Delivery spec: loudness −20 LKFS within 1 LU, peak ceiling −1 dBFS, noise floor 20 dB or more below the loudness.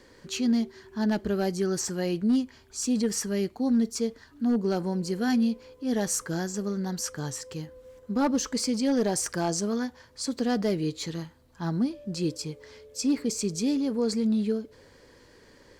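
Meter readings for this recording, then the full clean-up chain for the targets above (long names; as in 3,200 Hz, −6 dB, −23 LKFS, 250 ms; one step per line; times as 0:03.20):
share of clipped samples 0.4%; peaks flattened at −18.0 dBFS; integrated loudness −28.5 LKFS; sample peak −18.0 dBFS; target loudness −20.0 LKFS
→ clipped peaks rebuilt −18 dBFS
level +8.5 dB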